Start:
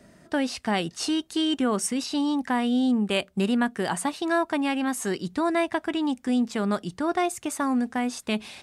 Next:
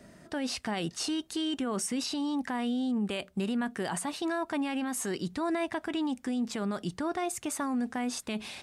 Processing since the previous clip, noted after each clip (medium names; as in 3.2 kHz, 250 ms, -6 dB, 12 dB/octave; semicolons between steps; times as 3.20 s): peak limiter -24 dBFS, peak gain reduction 11.5 dB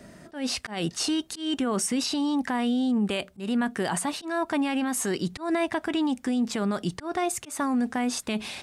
slow attack 160 ms; trim +5.5 dB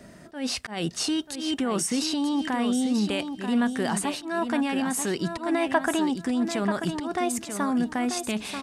time-frequency box 5.74–6.04 s, 550–1900 Hz +8 dB; feedback delay 937 ms, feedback 21%, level -8 dB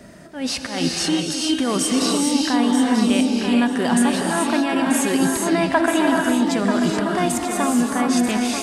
gated-style reverb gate 460 ms rising, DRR 0 dB; trim +4.5 dB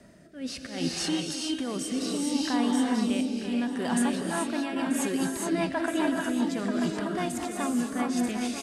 rotary cabinet horn 0.65 Hz, later 5 Hz, at 3.73 s; delay 1165 ms -21 dB; trim -7.5 dB